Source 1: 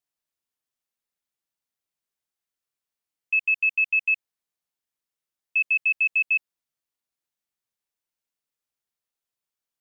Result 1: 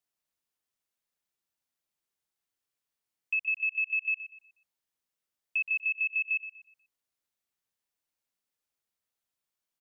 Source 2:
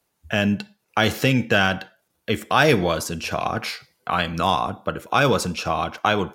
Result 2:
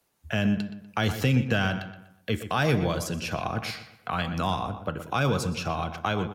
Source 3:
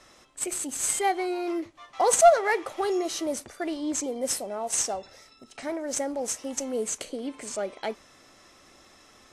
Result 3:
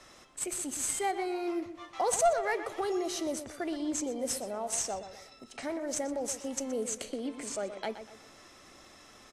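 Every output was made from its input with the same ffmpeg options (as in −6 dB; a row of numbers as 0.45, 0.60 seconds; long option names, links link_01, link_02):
-filter_complex "[0:a]acrossover=split=190[link_01][link_02];[link_02]acompressor=threshold=-40dB:ratio=1.5[link_03];[link_01][link_03]amix=inputs=2:normalize=0,asplit=2[link_04][link_05];[link_05]adelay=122,lowpass=frequency=3200:poles=1,volume=-10.5dB,asplit=2[link_06][link_07];[link_07]adelay=122,lowpass=frequency=3200:poles=1,volume=0.4,asplit=2[link_08][link_09];[link_09]adelay=122,lowpass=frequency=3200:poles=1,volume=0.4,asplit=2[link_10][link_11];[link_11]adelay=122,lowpass=frequency=3200:poles=1,volume=0.4[link_12];[link_06][link_08][link_10][link_12]amix=inputs=4:normalize=0[link_13];[link_04][link_13]amix=inputs=2:normalize=0"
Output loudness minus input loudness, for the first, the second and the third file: −7.0, −6.0, −6.0 LU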